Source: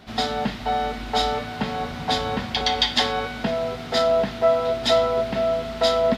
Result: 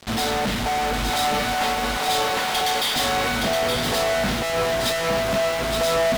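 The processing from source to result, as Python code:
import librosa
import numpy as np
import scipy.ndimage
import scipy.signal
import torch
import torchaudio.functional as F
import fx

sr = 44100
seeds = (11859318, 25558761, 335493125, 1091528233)

y = fx.highpass(x, sr, hz=520.0, slope=12, at=(1.1, 2.96))
y = fx.fuzz(y, sr, gain_db=40.0, gate_db=-43.0)
y = y + 10.0 ** (-5.0 / 20.0) * np.pad(y, (int(869 * sr / 1000.0), 0))[:len(y)]
y = y * librosa.db_to_amplitude(-8.5)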